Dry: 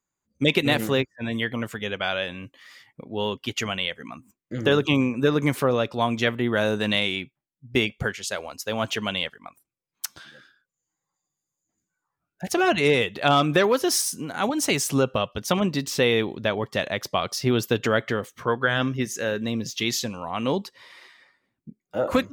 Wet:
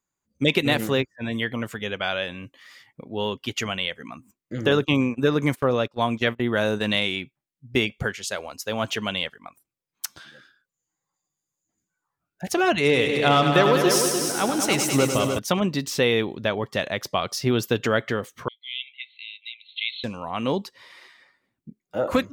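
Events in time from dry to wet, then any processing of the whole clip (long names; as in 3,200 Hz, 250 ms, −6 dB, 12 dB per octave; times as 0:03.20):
0:04.71–0:06.98: noise gate −30 dBFS, range −22 dB
0:12.79–0:15.39: echo machine with several playback heads 100 ms, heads all three, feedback 48%, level −9 dB
0:18.48–0:20.04: linear-phase brick-wall band-pass 2,000–4,300 Hz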